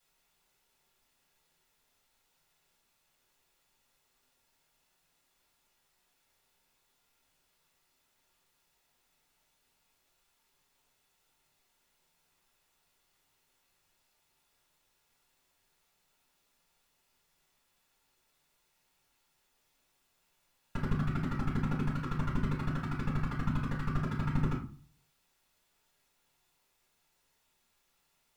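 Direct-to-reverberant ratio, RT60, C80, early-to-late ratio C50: -4.0 dB, 0.40 s, 12.5 dB, 6.5 dB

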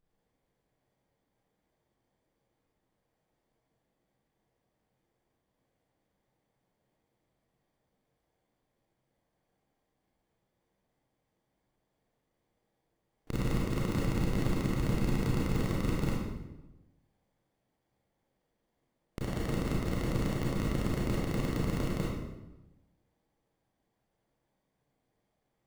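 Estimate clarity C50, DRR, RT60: -2.0 dB, -6.5 dB, 1.0 s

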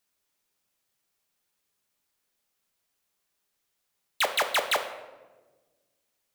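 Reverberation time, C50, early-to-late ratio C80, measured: 1.3 s, 10.0 dB, 12.0 dB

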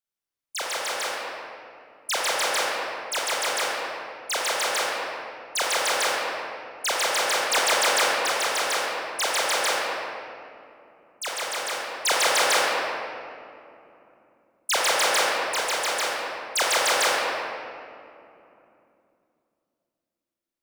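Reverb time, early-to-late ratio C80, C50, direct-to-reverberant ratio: 2.8 s, -0.5 dB, -2.0 dB, -4.5 dB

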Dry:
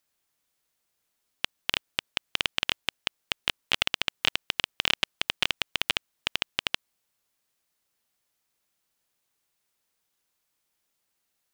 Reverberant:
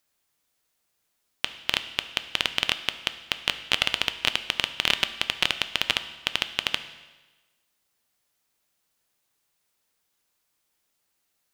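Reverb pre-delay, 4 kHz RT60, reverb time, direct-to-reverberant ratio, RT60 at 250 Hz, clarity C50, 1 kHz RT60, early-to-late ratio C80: 6 ms, 1.2 s, 1.2 s, 10.0 dB, 1.2 s, 12.5 dB, 1.2 s, 14.5 dB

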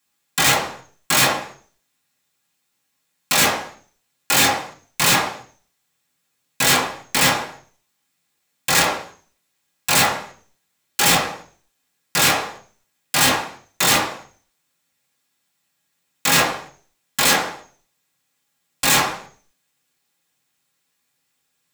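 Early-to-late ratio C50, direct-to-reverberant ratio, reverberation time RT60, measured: 10.0 dB, -4.5 dB, 0.40 s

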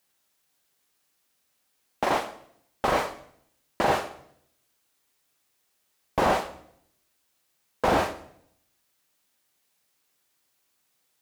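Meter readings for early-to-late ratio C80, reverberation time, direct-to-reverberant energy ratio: 15.5 dB, 0.65 s, 8.0 dB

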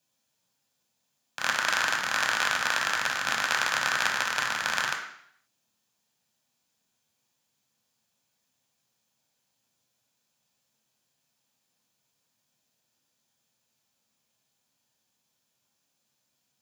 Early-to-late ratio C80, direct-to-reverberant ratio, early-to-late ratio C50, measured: 10.0 dB, 1.5 dB, 7.0 dB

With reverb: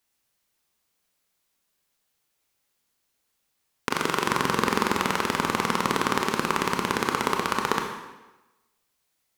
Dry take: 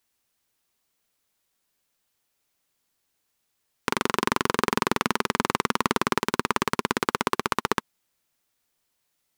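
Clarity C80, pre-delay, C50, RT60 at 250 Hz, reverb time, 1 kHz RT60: 6.5 dB, 23 ms, 4.5 dB, 1.0 s, 1.1 s, 1.1 s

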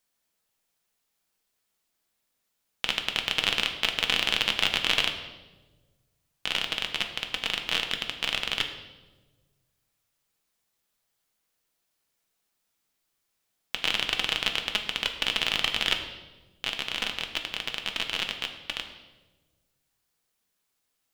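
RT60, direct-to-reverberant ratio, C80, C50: 1.3 s, 4.0 dB, 10.5 dB, 8.5 dB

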